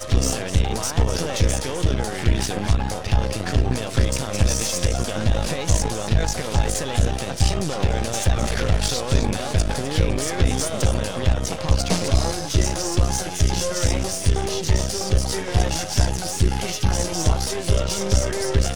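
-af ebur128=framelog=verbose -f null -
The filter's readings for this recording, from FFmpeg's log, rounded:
Integrated loudness:
  I:         -22.6 LUFS
  Threshold: -32.6 LUFS
Loudness range:
  LRA:         0.6 LU
  Threshold: -42.6 LUFS
  LRA low:   -23.0 LUFS
  LRA high:  -22.3 LUFS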